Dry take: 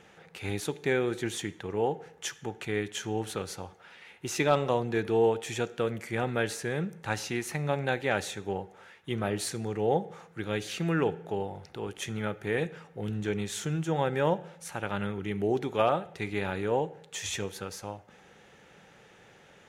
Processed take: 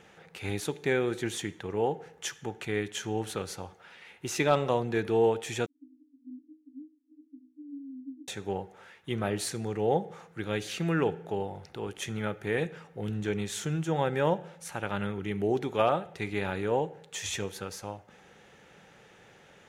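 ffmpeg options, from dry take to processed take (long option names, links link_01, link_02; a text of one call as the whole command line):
ffmpeg -i in.wav -filter_complex "[0:a]asettb=1/sr,asplit=3[link_01][link_02][link_03];[link_01]atrim=end=5.664[link_04];[link_02]atrim=start=5.66:end=8.28,asetpts=PTS-STARTPTS,afade=type=in:duration=0.004:curve=qsin,afade=type=out:start_time=2.616:duration=0.004:curve=qsin,asuperpass=centerf=280:order=20:qfactor=4.6[link_05];[link_03]atrim=start=8.276[link_06];[link_04][link_05]acrossfade=duration=0.004:curve1=hsin:curve2=qsin[link_07];[link_07][link_06]acrossfade=duration=0.004:curve1=qsin:curve2=hsin" out.wav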